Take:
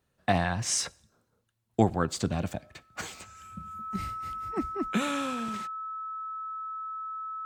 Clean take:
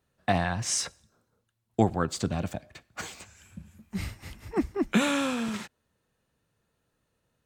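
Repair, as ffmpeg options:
ffmpeg -i in.wav -af "bandreject=frequency=1300:width=30,asetnsamples=nb_out_samples=441:pad=0,asendcmd='3.96 volume volume 5dB',volume=0dB" out.wav

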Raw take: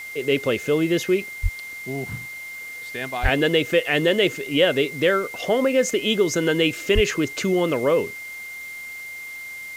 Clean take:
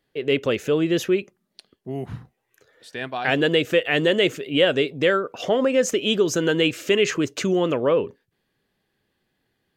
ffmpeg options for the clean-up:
ffmpeg -i in.wav -filter_complex "[0:a]bandreject=frequency=2100:width=30,asplit=3[link_01][link_02][link_03];[link_01]afade=type=out:start_time=1.42:duration=0.02[link_04];[link_02]highpass=frequency=140:width=0.5412,highpass=frequency=140:width=1.3066,afade=type=in:start_time=1.42:duration=0.02,afade=type=out:start_time=1.54:duration=0.02[link_05];[link_03]afade=type=in:start_time=1.54:duration=0.02[link_06];[link_04][link_05][link_06]amix=inputs=3:normalize=0,asplit=3[link_07][link_08][link_09];[link_07]afade=type=out:start_time=3.22:duration=0.02[link_10];[link_08]highpass=frequency=140:width=0.5412,highpass=frequency=140:width=1.3066,afade=type=in:start_time=3.22:duration=0.02,afade=type=out:start_time=3.34:duration=0.02[link_11];[link_09]afade=type=in:start_time=3.34:duration=0.02[link_12];[link_10][link_11][link_12]amix=inputs=3:normalize=0,asplit=3[link_13][link_14][link_15];[link_13]afade=type=out:start_time=6.94:duration=0.02[link_16];[link_14]highpass=frequency=140:width=0.5412,highpass=frequency=140:width=1.3066,afade=type=in:start_time=6.94:duration=0.02,afade=type=out:start_time=7.06:duration=0.02[link_17];[link_15]afade=type=in:start_time=7.06:duration=0.02[link_18];[link_16][link_17][link_18]amix=inputs=3:normalize=0,afftdn=noise_reduction=30:noise_floor=-36" out.wav

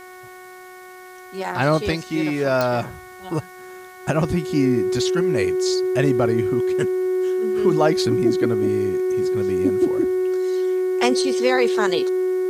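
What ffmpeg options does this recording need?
ffmpeg -i in.wav -af "adeclick=threshold=4,bandreject=frequency=368:width_type=h:width=4,bandreject=frequency=736:width_type=h:width=4,bandreject=frequency=1104:width_type=h:width=4,bandreject=frequency=1472:width_type=h:width=4,bandreject=frequency=1840:width_type=h:width=4,bandreject=frequency=2208:width_type=h:width=4,bandreject=frequency=370:width=30,agate=range=-21dB:threshold=-33dB" out.wav

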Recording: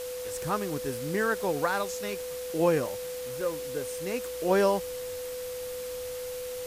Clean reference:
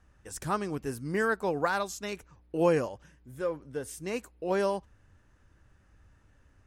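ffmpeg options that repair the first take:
ffmpeg -i in.wav -af "bandreject=frequency=500:width=30,afwtdn=0.0071,asetnsamples=nb_out_samples=441:pad=0,asendcmd='4.24 volume volume -4.5dB',volume=0dB" out.wav

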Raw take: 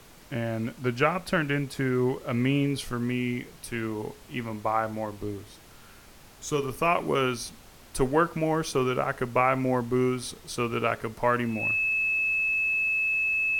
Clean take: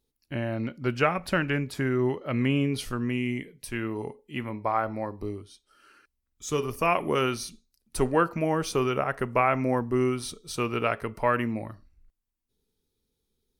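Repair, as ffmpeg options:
ffmpeg -i in.wav -af "bandreject=frequency=2600:width=30,afftdn=noise_reduction=27:noise_floor=-50" out.wav

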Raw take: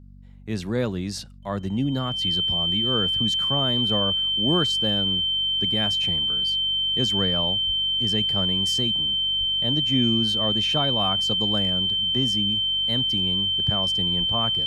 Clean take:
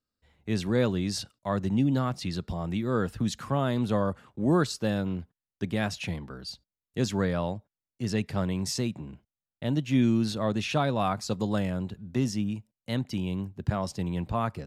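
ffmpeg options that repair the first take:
ffmpeg -i in.wav -filter_complex "[0:a]bandreject=frequency=47.7:width_type=h:width=4,bandreject=frequency=95.4:width_type=h:width=4,bandreject=frequency=143.1:width_type=h:width=4,bandreject=frequency=190.8:width_type=h:width=4,bandreject=frequency=238.5:width_type=h:width=4,bandreject=frequency=3100:width=30,asplit=3[link_01][link_02][link_03];[link_01]afade=type=out:start_time=7.66:duration=0.02[link_04];[link_02]highpass=frequency=140:width=0.5412,highpass=frequency=140:width=1.3066,afade=type=in:start_time=7.66:duration=0.02,afade=type=out:start_time=7.78:duration=0.02[link_05];[link_03]afade=type=in:start_time=7.78:duration=0.02[link_06];[link_04][link_05][link_06]amix=inputs=3:normalize=0,asplit=3[link_07][link_08][link_09];[link_07]afade=type=out:start_time=9.39:duration=0.02[link_10];[link_08]highpass=frequency=140:width=0.5412,highpass=frequency=140:width=1.3066,afade=type=in:start_time=9.39:duration=0.02,afade=type=out:start_time=9.51:duration=0.02[link_11];[link_09]afade=type=in:start_time=9.51:duration=0.02[link_12];[link_10][link_11][link_12]amix=inputs=3:normalize=0,asplit=3[link_13][link_14][link_15];[link_13]afade=type=out:start_time=14.18:duration=0.02[link_16];[link_14]highpass=frequency=140:width=0.5412,highpass=frequency=140:width=1.3066,afade=type=in:start_time=14.18:duration=0.02,afade=type=out:start_time=14.3:duration=0.02[link_17];[link_15]afade=type=in:start_time=14.3:duration=0.02[link_18];[link_16][link_17][link_18]amix=inputs=3:normalize=0" out.wav

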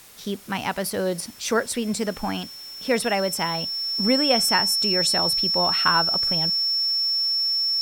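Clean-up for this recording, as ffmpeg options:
ffmpeg -i in.wav -af "bandreject=frequency=5400:width=30,afwtdn=0.0045" out.wav

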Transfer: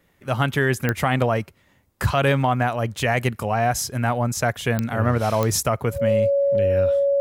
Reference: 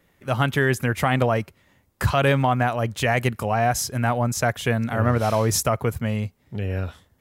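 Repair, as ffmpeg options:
ffmpeg -i in.wav -af "adeclick=threshold=4,bandreject=frequency=560:width=30" out.wav

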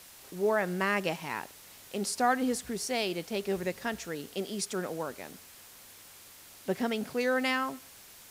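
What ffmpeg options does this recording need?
ffmpeg -i in.wav -af "adeclick=threshold=4,afwtdn=0.0028" out.wav

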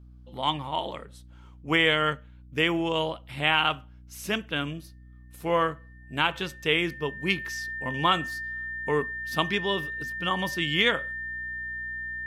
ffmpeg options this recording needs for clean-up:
ffmpeg -i in.wav -af "bandreject=frequency=61.2:width_type=h:width=4,bandreject=frequency=122.4:width_type=h:width=4,bandreject=frequency=183.6:width_type=h:width=4,bandreject=frequency=244.8:width_type=h:width=4,bandreject=frequency=306:width_type=h:width=4,bandreject=frequency=1800:width=30" out.wav

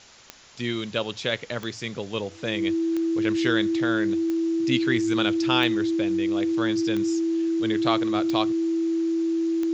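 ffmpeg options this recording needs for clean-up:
ffmpeg -i in.wav -af "adeclick=threshold=4,bandreject=frequency=330:width=30,afwtdn=0.0045" out.wav

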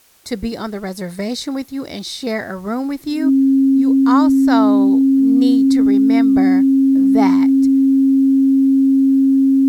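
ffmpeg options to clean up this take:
ffmpeg -i in.wav -af "bandreject=frequency=270:width=30,agate=range=-21dB:threshold=-22dB" out.wav

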